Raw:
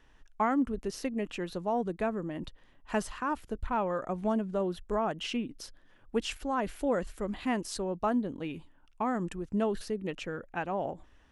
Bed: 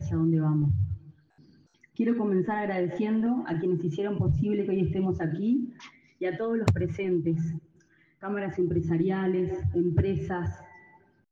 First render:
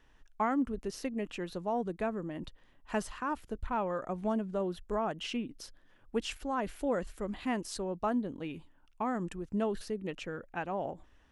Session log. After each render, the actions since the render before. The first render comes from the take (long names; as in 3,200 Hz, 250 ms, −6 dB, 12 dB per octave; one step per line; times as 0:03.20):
level −2.5 dB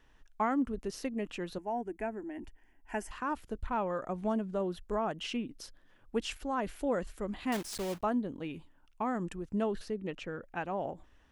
0:01.58–0:03.11: phaser with its sweep stopped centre 790 Hz, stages 8
0:07.52–0:08.05: one scale factor per block 3 bits
0:09.70–0:10.42: high-shelf EQ 8,000 Hz → 5,300 Hz −8.5 dB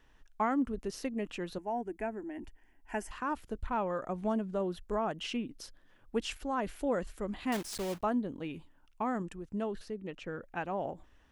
0:09.22–0:10.26: clip gain −3.5 dB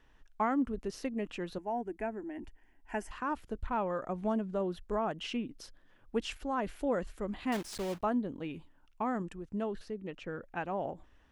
high-shelf EQ 6,100 Hz −6 dB